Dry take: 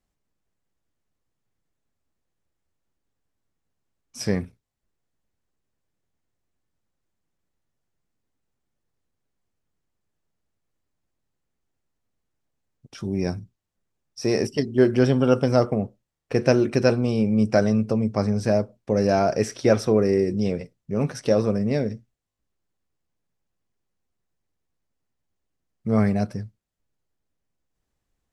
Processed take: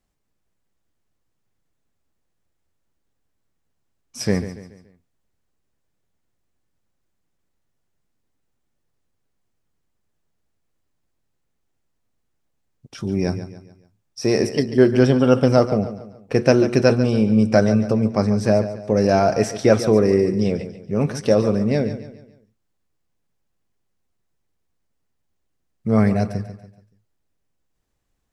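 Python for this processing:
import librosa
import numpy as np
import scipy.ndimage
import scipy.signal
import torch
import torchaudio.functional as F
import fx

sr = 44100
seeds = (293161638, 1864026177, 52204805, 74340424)

y = fx.echo_feedback(x, sr, ms=142, feedback_pct=41, wet_db=-12.5)
y = F.gain(torch.from_numpy(y), 3.5).numpy()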